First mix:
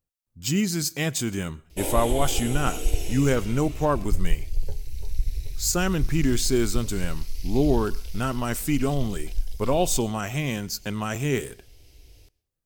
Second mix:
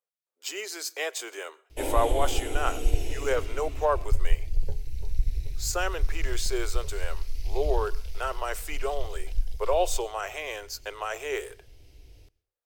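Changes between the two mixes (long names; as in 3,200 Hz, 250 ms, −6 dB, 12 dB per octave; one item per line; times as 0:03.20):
speech: add Butterworth high-pass 410 Hz 48 dB per octave
master: add high-shelf EQ 3,700 Hz −8.5 dB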